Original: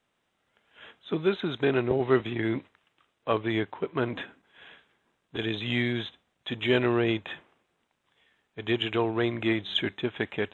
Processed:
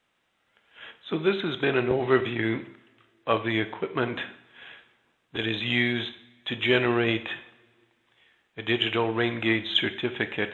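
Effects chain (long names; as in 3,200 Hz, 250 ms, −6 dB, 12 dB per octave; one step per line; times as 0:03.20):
parametric band 2,300 Hz +5 dB 2.1 octaves
on a send: convolution reverb, pre-delay 3 ms, DRR 9 dB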